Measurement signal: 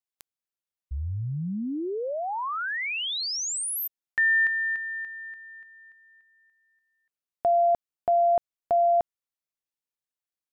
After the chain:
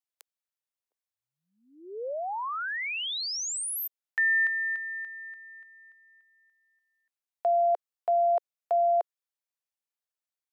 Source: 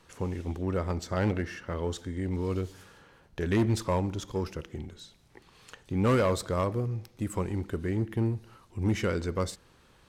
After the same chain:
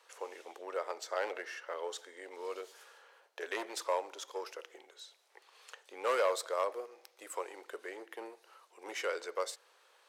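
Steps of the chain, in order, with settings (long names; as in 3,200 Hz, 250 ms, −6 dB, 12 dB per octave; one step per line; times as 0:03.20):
Butterworth high-pass 460 Hz 36 dB per octave
level −2.5 dB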